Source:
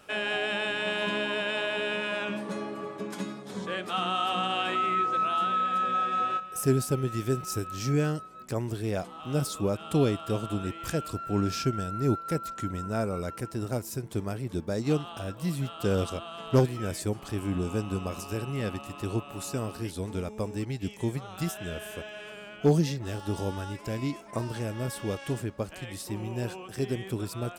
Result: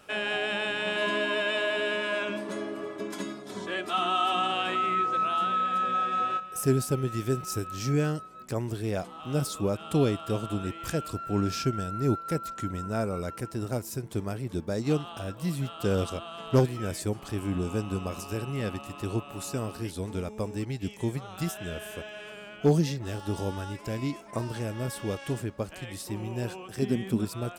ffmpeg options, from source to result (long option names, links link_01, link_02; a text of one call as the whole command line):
ffmpeg -i in.wav -filter_complex "[0:a]asettb=1/sr,asplit=3[link_01][link_02][link_03];[link_01]atrim=end=0.964[link_04];[link_02]atrim=start=0.96:end=4.51,asetpts=PTS-STARTPTS,afade=type=in:duration=0.004:curve=qsin,afade=type=out:start_time=3.546:duration=0.004:curve=qsin,aecho=1:1:3:0.6,atrim=end_sample=156555[link_05];[link_03]atrim=start=4.506[link_06];[link_04][link_05]acrossfade=duration=0.004:curve1=hsin:curve2=qsin[link_07];[link_07][link_06]acrossfade=duration=0.004:curve1=qsin:curve2=hsin,asettb=1/sr,asplit=3[link_08][link_09][link_10];[link_08]atrim=end=26.824[link_11];[link_09]atrim=start=26.82:end=27.25,asetpts=PTS-STARTPTS,afade=type=in:duration=0.004:curve=qsin,afade=type=out:start_time=0.426:duration=0.004:curve=qsin,equalizer=frequency=220:width_type=o:width=0.46:gain=13[link_12];[link_10]atrim=start=27.246[link_13];[link_11][link_12]acrossfade=duration=0.004:curve1=hsin:curve2=qsin[link_14];[link_14][link_13]acrossfade=duration=0.004:curve1=qsin:curve2=hsin" out.wav